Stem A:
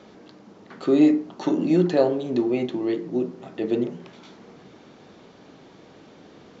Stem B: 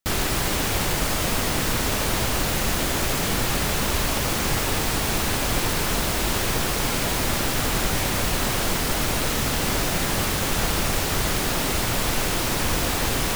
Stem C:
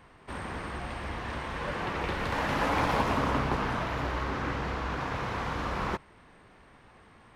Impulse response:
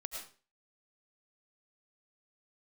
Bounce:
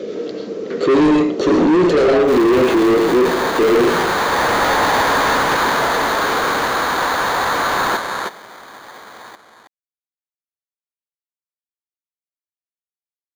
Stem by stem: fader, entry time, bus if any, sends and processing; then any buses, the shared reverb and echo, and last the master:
−1.0 dB, 0.00 s, bus A, send −3.5 dB, no echo send, high-shelf EQ 5,600 Hz +11 dB
muted
+1.0 dB, 2.00 s, no bus, no send, echo send −8.5 dB, sample-rate reduction 2,700 Hz, jitter 0%; low-shelf EQ 180 Hz −10.5 dB
bus A: 0.0 dB, low-pass with resonance 470 Hz, resonance Q 4.9; brickwall limiter −14 dBFS, peak gain reduction 14 dB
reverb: on, RT60 0.40 s, pre-delay 65 ms
echo: single-tap delay 321 ms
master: mid-hump overdrive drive 28 dB, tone 3,500 Hz, clips at −6 dBFS

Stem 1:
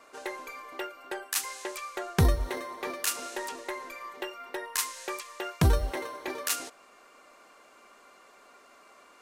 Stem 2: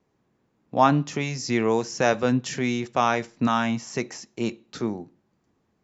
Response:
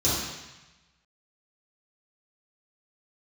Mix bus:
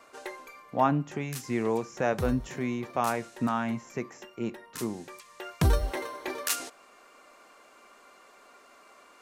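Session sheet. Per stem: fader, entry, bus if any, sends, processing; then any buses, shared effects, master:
+0.5 dB, 0.00 s, no send, automatic ducking −12 dB, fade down 0.95 s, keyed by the second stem
−5.5 dB, 0.00 s, no send, parametric band 4,600 Hz −13.5 dB 1.2 octaves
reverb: not used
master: no processing

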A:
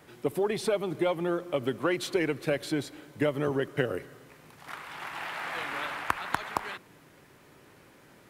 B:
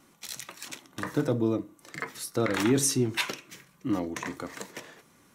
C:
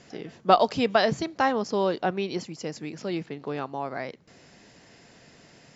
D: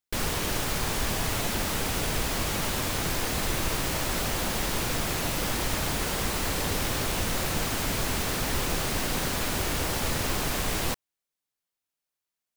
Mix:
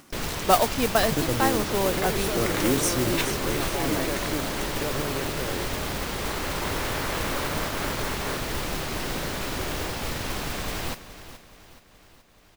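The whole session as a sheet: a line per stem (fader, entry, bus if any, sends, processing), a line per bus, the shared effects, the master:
−6.5 dB, 1.60 s, no send, no echo send, compressor on every frequency bin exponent 0.4; brickwall limiter −15 dBFS, peak gain reduction 10.5 dB
−1.0 dB, 0.00 s, no send, echo send −10 dB, no processing
−1.0 dB, 0.00 s, no send, no echo send, dead-zone distortion −49 dBFS
−2.0 dB, 0.00 s, no send, echo send −13.5 dB, low-pass filter 5,600 Hz 12 dB per octave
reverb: not used
echo: repeating echo 425 ms, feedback 45%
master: upward compression, threshold −47 dBFS; noise that follows the level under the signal 10 dB

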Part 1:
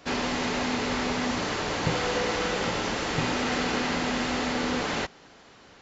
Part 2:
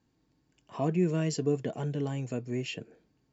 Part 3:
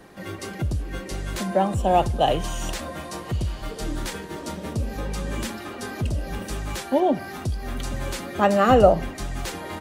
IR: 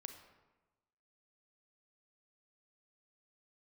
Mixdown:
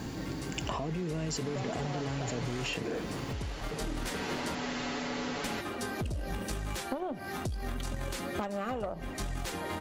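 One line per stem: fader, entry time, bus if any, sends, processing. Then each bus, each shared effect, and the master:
0:01.16 −17 dB → 0:01.66 −7.5 dB → 0:02.64 −7.5 dB → 0:02.97 −16.5 dB → 0:03.87 −16.5 dB → 0:04.32 −7 dB, 0.55 s, no send, comb filter 7.1 ms
−6.0 dB, 0.00 s, no send, envelope flattener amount 100%
−1.5 dB, 0.00 s, muted 0:04.55–0:05.44, no send, downward compressor 3 to 1, threshold −26 dBFS, peak gain reduction 12.5 dB; harmonic generator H 4 −12 dB, 6 −21 dB, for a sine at −14.5 dBFS; automatic ducking −8 dB, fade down 0.25 s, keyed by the second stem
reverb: not used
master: downward compressor, threshold −31 dBFS, peak gain reduction 10 dB

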